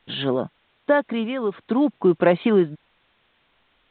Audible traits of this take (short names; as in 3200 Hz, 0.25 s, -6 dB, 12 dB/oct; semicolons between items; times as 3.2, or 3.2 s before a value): tremolo triangle 0.55 Hz, depth 75%; a quantiser's noise floor 10-bit, dither triangular; µ-law